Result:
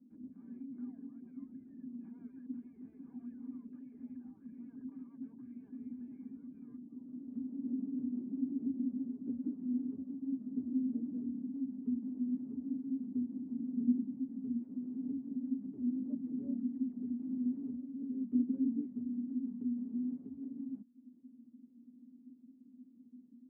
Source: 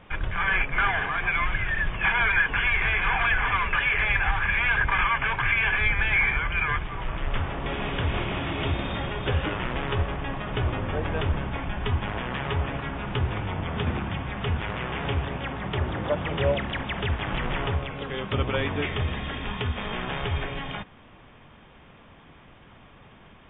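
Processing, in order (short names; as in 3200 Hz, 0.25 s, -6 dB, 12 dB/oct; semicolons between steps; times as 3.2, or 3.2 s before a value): reverb removal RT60 0.56 s; Butterworth band-pass 250 Hz, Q 7.4; gain +9.5 dB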